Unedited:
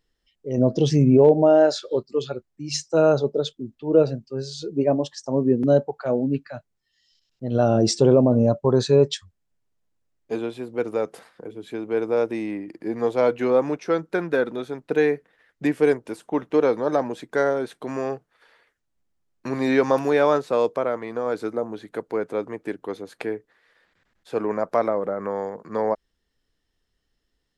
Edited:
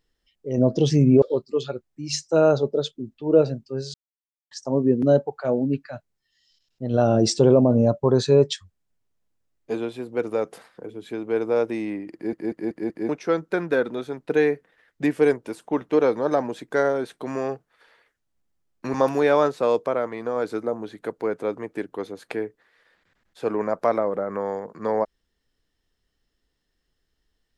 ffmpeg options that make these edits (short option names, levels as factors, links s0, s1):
-filter_complex "[0:a]asplit=10[s0][s1][s2][s3][s4][s5][s6][s7][s8][s9];[s0]atrim=end=1.222[s10];[s1]atrim=start=1.828:end=4.55,asetpts=PTS-STARTPTS,afade=t=out:st=2.718:d=0.004:c=hsin[s11];[s2]atrim=start=4.55:end=5.12,asetpts=PTS-STARTPTS,volume=0[s12];[s3]atrim=start=5.12:end=12.942,asetpts=PTS-STARTPTS,afade=t=in:d=0.004:c=hsin[s13];[s4]atrim=start=12.748:end=12.942[s14];[s5]atrim=start=12.748:end=12.942[s15];[s6]atrim=start=12.748:end=12.942[s16];[s7]atrim=start=12.748:end=12.942[s17];[s8]atrim=start=13.698:end=19.552[s18];[s9]atrim=start=19.838[s19];[s11][s12][s13]concat=n=3:v=0:a=1[s20];[s10][s20]acrossfade=d=0.004:c1=hsin:c2=hsin[s21];[s21][s14]acrossfade=d=0.004:c1=hsin:c2=hsin[s22];[s22][s15]acrossfade=d=0.004:c1=hsin:c2=hsin[s23];[s23][s16]acrossfade=d=0.004:c1=hsin:c2=hsin[s24];[s24][s17]acrossfade=d=0.004:c1=hsin:c2=hsin[s25];[s25][s18]acrossfade=d=0.004:c1=hsin:c2=hsin[s26];[s26][s19]acrossfade=d=0.004:c1=hsin:c2=hsin"